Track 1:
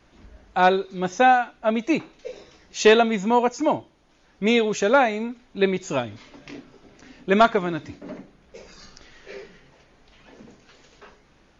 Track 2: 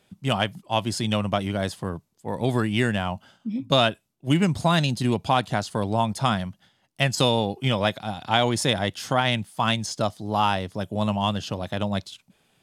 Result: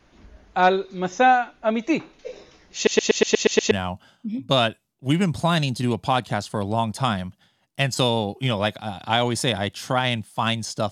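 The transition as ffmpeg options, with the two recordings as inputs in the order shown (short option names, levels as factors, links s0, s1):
-filter_complex "[0:a]apad=whole_dur=10.91,atrim=end=10.91,asplit=8[s0][s1][s2][s3][s4][s5][s6][s7];[s0]atrim=end=2.872[s8];[s1]atrim=start=2.748:end=2.872[s9];[s2]atrim=start=2.748:end=2.872[s10];[s3]atrim=start=2.748:end=2.872[s11];[s4]atrim=start=2.748:end=2.872[s12];[s5]atrim=start=2.748:end=2.872[s13];[s6]atrim=start=2.748:end=2.872[s14];[s7]atrim=start=2.748:end=2.872[s15];[1:a]atrim=start=2.918:end=10.12[s16];[s8][s9]acrossfade=d=0.004:c1=hsin:c2=hsin[s17];[s17][s10]acrossfade=d=0.004:c1=hsin:c2=hsin[s18];[s18][s11]acrossfade=d=0.004:c1=hsin:c2=hsin[s19];[s19][s12]acrossfade=d=0.004:c1=hsin:c2=hsin[s20];[s20][s13]acrossfade=d=0.004:c1=hsin:c2=hsin[s21];[s21][s14]acrossfade=d=0.004:c1=hsin:c2=hsin[s22];[s22][s15]acrossfade=d=0.004:c1=hsin:c2=hsin[s23];[s23][s16]acrossfade=d=0.004:c1=hsin:c2=hsin"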